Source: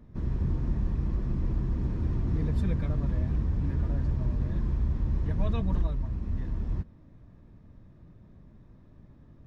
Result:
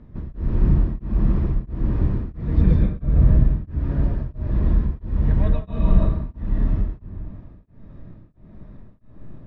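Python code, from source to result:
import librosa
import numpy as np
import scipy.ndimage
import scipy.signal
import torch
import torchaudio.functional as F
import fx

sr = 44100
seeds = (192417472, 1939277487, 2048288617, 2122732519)

y = fx.low_shelf(x, sr, hz=280.0, db=8.0, at=(2.57, 3.43))
y = fx.rider(y, sr, range_db=3, speed_s=2.0)
y = fx.air_absorb(y, sr, metres=170.0)
y = fx.rev_freeverb(y, sr, rt60_s=1.3, hf_ratio=0.7, predelay_ms=90, drr_db=-4.0)
y = y * np.abs(np.cos(np.pi * 1.5 * np.arange(len(y)) / sr))
y = y * librosa.db_to_amplitude(4.0)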